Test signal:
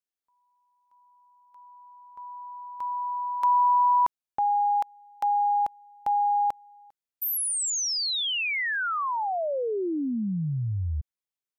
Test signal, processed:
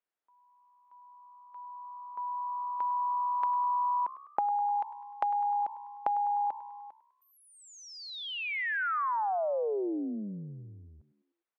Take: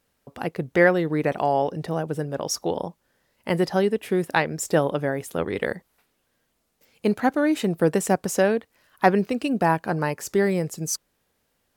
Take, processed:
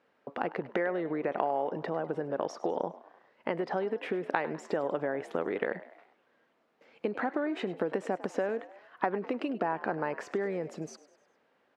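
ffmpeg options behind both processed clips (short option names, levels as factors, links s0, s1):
-filter_complex "[0:a]acompressor=threshold=0.0158:ratio=6:attack=18:release=99:knee=6:detection=peak,highpass=300,lowpass=2000,asplit=2[s0][s1];[s1]asplit=4[s2][s3][s4][s5];[s2]adelay=101,afreqshift=66,volume=0.141[s6];[s3]adelay=202,afreqshift=132,volume=0.0708[s7];[s4]adelay=303,afreqshift=198,volume=0.0355[s8];[s5]adelay=404,afreqshift=264,volume=0.0176[s9];[s6][s7][s8][s9]amix=inputs=4:normalize=0[s10];[s0][s10]amix=inputs=2:normalize=0,volume=2"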